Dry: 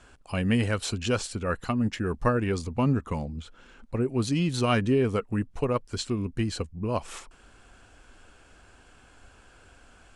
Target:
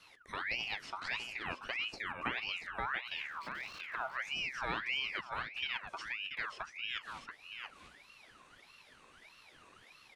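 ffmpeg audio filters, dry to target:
ffmpeg -i in.wav -filter_complex "[0:a]asettb=1/sr,asplit=3[link_01][link_02][link_03];[link_01]atrim=end=3.194[link_04];[link_02]atrim=start=3.19:end=4.17,asetpts=PTS-STARTPTS,afade=type=in:duration=0.004:curve=qsin,afade=type=out:start_time=0.976:duration=0.004:curve=qsin,aeval=exprs='val(0)+0.5*0.015*sgn(val(0))':channel_layout=same[link_05];[link_03]atrim=start=4.166[link_06];[link_04][link_05]acrossfade=duration=0.004:curve1=hsin:curve2=qsin[link_07];[link_07][link_06]acrossfade=duration=0.004:curve1=qsin:curve2=hsin,acrossover=split=4300[link_08][link_09];[link_09]acompressor=threshold=-57dB:ratio=4:attack=1:release=60[link_10];[link_08][link_10]amix=inputs=2:normalize=0,flanger=delay=6.9:depth=4.8:regen=-80:speed=0.58:shape=sinusoidal,aecho=1:1:683:0.355,acrossover=split=190|680|1800[link_11][link_12][link_13][link_14];[link_13]crystalizer=i=6:c=0[link_15];[link_11][link_12][link_15][link_14]amix=inputs=4:normalize=0,acompressor=threshold=-44dB:ratio=1.5,aeval=exprs='val(0)*sin(2*PI*1900*n/s+1900*0.45/1.6*sin(2*PI*1.6*n/s))':channel_layout=same" out.wav

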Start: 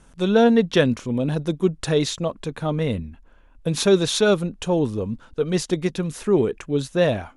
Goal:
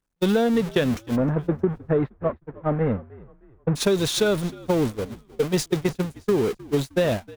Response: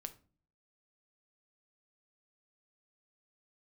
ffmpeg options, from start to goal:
-filter_complex "[0:a]aeval=exprs='val(0)+0.5*0.0841*sgn(val(0))':channel_layout=same,asplit=3[link_01][link_02][link_03];[link_01]afade=type=out:start_time=1.15:duration=0.02[link_04];[link_02]lowpass=frequency=1700:width=0.5412,lowpass=frequency=1700:width=1.3066,afade=type=in:start_time=1.15:duration=0.02,afade=type=out:start_time=3.75:duration=0.02[link_05];[link_03]afade=type=in:start_time=3.75:duration=0.02[link_06];[link_04][link_05][link_06]amix=inputs=3:normalize=0,agate=range=-56dB:threshold=-19dB:ratio=16:detection=peak,acompressor=threshold=-20dB:ratio=6,asplit=4[link_07][link_08][link_09][link_10];[link_08]adelay=310,afreqshift=-62,volume=-21dB[link_11];[link_09]adelay=620,afreqshift=-124,volume=-29.4dB[link_12];[link_10]adelay=930,afreqshift=-186,volume=-37.8dB[link_13];[link_07][link_11][link_12][link_13]amix=inputs=4:normalize=0,volume=2dB"

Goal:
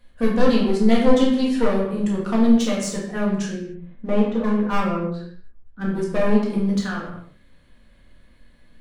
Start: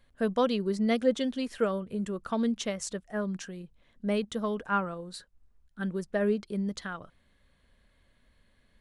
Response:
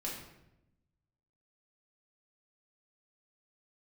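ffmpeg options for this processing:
-filter_complex "[0:a]asettb=1/sr,asplit=3[link_01][link_02][link_03];[link_01]atrim=end=3.524[link_04];[link_02]atrim=start=3.52:end=5.89,asetpts=PTS-STARTPTS,afade=type=in:duration=0.004:curve=qsin,afade=type=out:start_time=2.366:duration=0.004:curve=qsin,lowpass=1800[link_05];[link_03]atrim=start=5.886[link_06];[link_04][link_05]acrossfade=duration=0.004:curve1=hsin:curve2=qsin[link_07];[link_07][link_06]acrossfade=duration=0.004:curve1=qsin:curve2=hsin,aeval=exprs='clip(val(0),-1,0.0282)':channel_layout=same[link_08];[1:a]atrim=start_sample=2205,afade=type=out:start_time=0.36:duration=0.01,atrim=end_sample=16317[link_09];[link_08][link_09]afir=irnorm=-1:irlink=0,volume=8dB"

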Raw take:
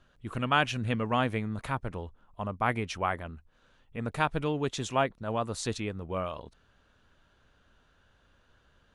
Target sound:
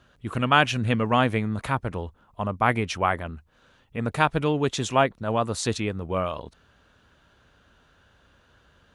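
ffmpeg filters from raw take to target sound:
ffmpeg -i in.wav -af "highpass=45,volume=6.5dB" out.wav

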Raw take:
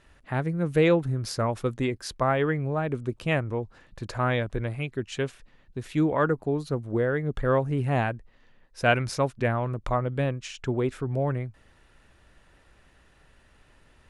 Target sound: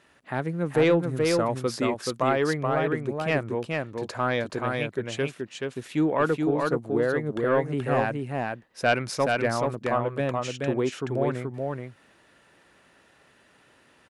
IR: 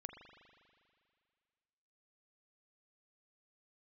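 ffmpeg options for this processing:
-af "highpass=180,asoftclip=type=tanh:threshold=-12.5dB,aecho=1:1:428:0.668,volume=1.5dB"

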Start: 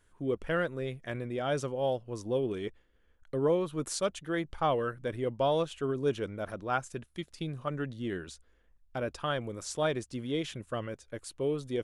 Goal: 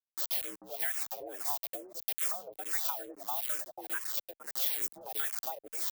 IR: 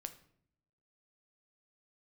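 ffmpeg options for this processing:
-filter_complex "[0:a]agate=range=-33dB:threshold=-55dB:ratio=3:detection=peak,lowpass=4600,lowshelf=frequency=150:gain=-5.5,atempo=2,acrossover=split=330|3300[link_01][link_02][link_03];[link_01]adelay=70[link_04];[link_02]adelay=580[link_05];[link_04][link_05][link_03]amix=inputs=3:normalize=0,afreqshift=190,acrusher=bits=6:mix=0:aa=0.000001,acrossover=split=760[link_06][link_07];[link_06]aeval=exprs='val(0)*(1-1/2+1/2*cos(2*PI*1.6*n/s))':channel_layout=same[link_08];[link_07]aeval=exprs='val(0)*(1-1/2-1/2*cos(2*PI*1.6*n/s))':channel_layout=same[link_09];[link_08][link_09]amix=inputs=2:normalize=0,acompressor=threshold=-43dB:ratio=4,aemphasis=mode=production:type=riaa,asplit=2[link_10][link_11];[link_11]afreqshift=-2.3[link_12];[link_10][link_12]amix=inputs=2:normalize=1,volume=6dB"

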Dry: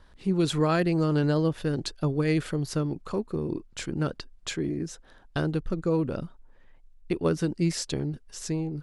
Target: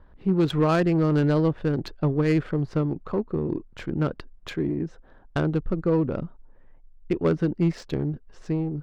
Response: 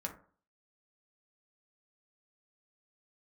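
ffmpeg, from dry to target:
-af "asoftclip=type=hard:threshold=-18dB,adynamicsmooth=sensitivity=2:basefreq=1500,volume=3.5dB"

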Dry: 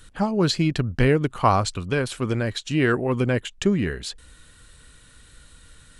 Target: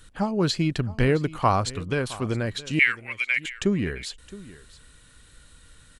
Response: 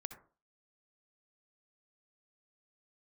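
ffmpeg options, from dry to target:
-filter_complex "[0:a]asettb=1/sr,asplit=3[link_01][link_02][link_03];[link_01]atrim=end=2.794[link_04];[link_02]atrim=start=2.79:end=3.44,asetpts=PTS-STARTPTS,afade=type=in:duration=0.004:curve=qsin,afade=type=out:start_time=0.646:duration=0.004:curve=qsin,highpass=frequency=2200:width_type=q:width=10[link_05];[link_03]atrim=start=3.436[link_06];[link_04][link_05]acrossfade=duration=0.004:curve1=hsin:curve2=qsin[link_07];[link_07][link_06]acrossfade=duration=0.004:curve1=qsin:curve2=hsin,asplit=2[link_08][link_09];[link_09]aecho=0:1:666:0.119[link_10];[link_08][link_10]amix=inputs=2:normalize=0,volume=-2.5dB"

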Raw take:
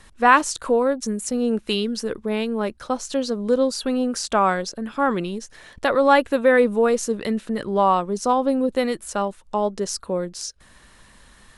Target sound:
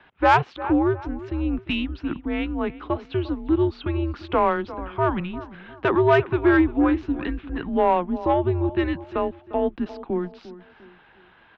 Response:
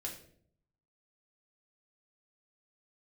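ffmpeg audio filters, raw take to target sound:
-filter_complex "[0:a]highpass=frequency=270:width_type=q:width=0.5412,highpass=frequency=270:width_type=q:width=1.307,lowpass=frequency=3300:width_type=q:width=0.5176,lowpass=frequency=3300:width_type=q:width=0.7071,lowpass=frequency=3300:width_type=q:width=1.932,afreqshift=-170,asplit=2[link_01][link_02];[link_02]adelay=350,lowpass=frequency=2200:poles=1,volume=-16dB,asplit=2[link_03][link_04];[link_04]adelay=350,lowpass=frequency=2200:poles=1,volume=0.38,asplit=2[link_05][link_06];[link_06]adelay=350,lowpass=frequency=2200:poles=1,volume=0.38[link_07];[link_01][link_03][link_05][link_07]amix=inputs=4:normalize=0,acontrast=57,volume=-6dB"

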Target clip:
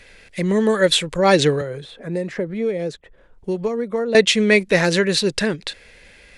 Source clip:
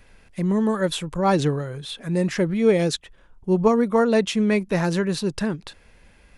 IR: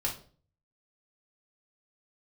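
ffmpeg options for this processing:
-filter_complex "[0:a]equalizer=frequency=500:width_type=o:width=1:gain=9,equalizer=frequency=1000:width_type=o:width=1:gain=-3,equalizer=frequency=2000:width_type=o:width=1:gain=11,equalizer=frequency=4000:width_type=o:width=1:gain=9,equalizer=frequency=8000:width_type=o:width=1:gain=8,asettb=1/sr,asplit=3[link_01][link_02][link_03];[link_01]atrim=end=1.614[link_04];[link_02]atrim=start=1.61:end=4.15,asetpts=PTS-STARTPTS,afade=type=in:duration=0.004:curve=qsin,afade=type=out:start_time=2.536:duration=0.004:curve=qsin,acrossover=split=190|1300[link_05][link_06][link_07];[link_05]acompressor=threshold=-35dB:ratio=4[link_08];[link_06]acompressor=threshold=-23dB:ratio=4[link_09];[link_07]acompressor=threshold=-47dB:ratio=4[link_10];[link_08][link_09][link_10]amix=inputs=3:normalize=0[link_11];[link_03]atrim=start=4.146[link_12];[link_04][link_11]acrossfade=duration=0.004:curve1=hsin:curve2=qsin[link_13];[link_13][link_12]acrossfade=duration=0.004:curve1=qsin:curve2=hsin"

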